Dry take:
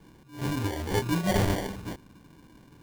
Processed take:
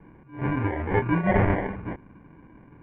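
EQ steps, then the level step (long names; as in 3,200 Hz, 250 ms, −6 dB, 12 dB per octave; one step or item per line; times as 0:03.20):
Chebyshev low-pass filter 2,300 Hz, order 4
dynamic equaliser 1,800 Hz, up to +3 dB, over −42 dBFS, Q 0.71
high-frequency loss of the air 130 metres
+4.5 dB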